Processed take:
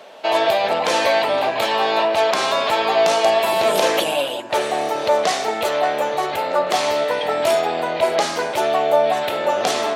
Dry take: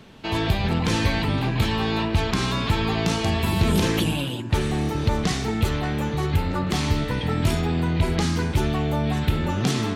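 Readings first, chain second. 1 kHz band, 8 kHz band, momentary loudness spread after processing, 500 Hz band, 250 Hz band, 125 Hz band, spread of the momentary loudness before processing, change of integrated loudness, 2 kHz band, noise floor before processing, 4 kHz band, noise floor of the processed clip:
+11.0 dB, +5.0 dB, 5 LU, +12.0 dB, −8.0 dB, −21.0 dB, 3 LU, +4.5 dB, +6.0 dB, −29 dBFS, +5.5 dB, −26 dBFS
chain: high-pass with resonance 610 Hz, resonance Q 4.9
level +5 dB

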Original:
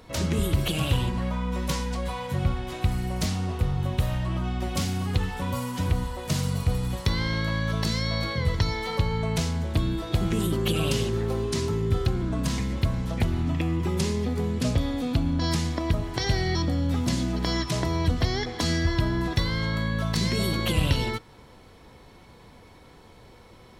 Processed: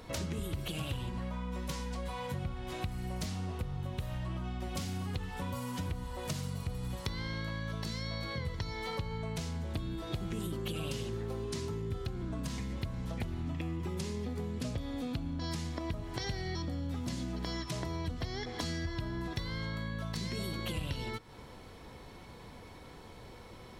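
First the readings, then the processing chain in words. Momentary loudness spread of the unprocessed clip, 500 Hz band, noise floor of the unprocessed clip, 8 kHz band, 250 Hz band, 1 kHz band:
4 LU, −10.5 dB, −51 dBFS, −10.5 dB, −11.0 dB, −10.0 dB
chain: downward compressor 4 to 1, threshold −36 dBFS, peak gain reduction 15.5 dB

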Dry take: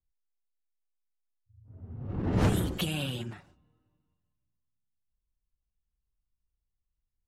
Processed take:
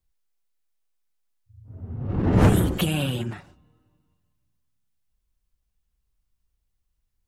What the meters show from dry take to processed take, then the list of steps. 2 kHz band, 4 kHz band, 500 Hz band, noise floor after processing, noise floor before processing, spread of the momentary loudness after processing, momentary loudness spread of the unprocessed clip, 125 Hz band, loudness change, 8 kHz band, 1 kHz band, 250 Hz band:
+6.5 dB, +4.0 dB, +8.5 dB, −76 dBFS, −85 dBFS, 20 LU, 17 LU, +8.5 dB, +7.5 dB, +6.0 dB, +8.0 dB, +8.5 dB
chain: dynamic equaliser 4,600 Hz, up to −7 dB, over −53 dBFS, Q 0.94
level +8.5 dB

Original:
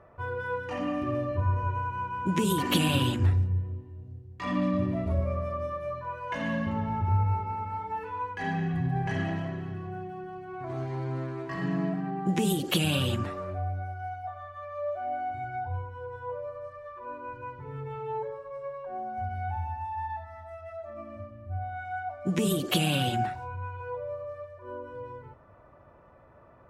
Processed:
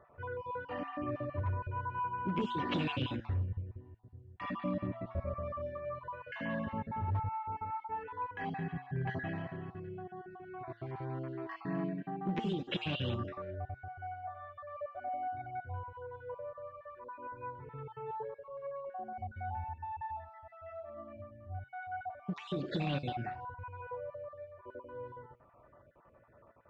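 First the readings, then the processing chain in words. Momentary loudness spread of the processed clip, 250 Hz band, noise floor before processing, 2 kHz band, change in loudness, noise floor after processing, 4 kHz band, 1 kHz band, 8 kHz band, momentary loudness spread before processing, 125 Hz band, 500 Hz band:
12 LU, −9.0 dB, −55 dBFS, −7.5 dB, −8.5 dB, −62 dBFS, −12.0 dB, −6.5 dB, below −30 dB, 15 LU, −9.5 dB, −7.5 dB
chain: time-frequency cells dropped at random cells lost 29%
flanger 0.13 Hz, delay 6.8 ms, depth 2.4 ms, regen +87%
gain into a clipping stage and back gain 25 dB
Gaussian smoothing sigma 2.4 samples
low-shelf EQ 400 Hz −4.5 dB
level +1 dB

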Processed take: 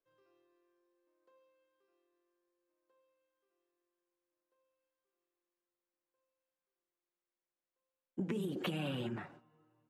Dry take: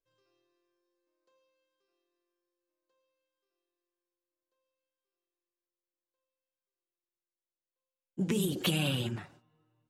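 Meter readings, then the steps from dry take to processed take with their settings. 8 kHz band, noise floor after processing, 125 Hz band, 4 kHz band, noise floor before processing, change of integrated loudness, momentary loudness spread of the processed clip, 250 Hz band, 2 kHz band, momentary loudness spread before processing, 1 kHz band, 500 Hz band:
−19.5 dB, below −85 dBFS, −8.5 dB, −12.0 dB, below −85 dBFS, −8.0 dB, 10 LU, −6.0 dB, −7.5 dB, 12 LU, −3.0 dB, −4.5 dB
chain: three-way crossover with the lows and the highs turned down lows −14 dB, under 150 Hz, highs −15 dB, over 2,400 Hz
downward compressor 4 to 1, threshold −40 dBFS, peak gain reduction 10.5 dB
level +4 dB

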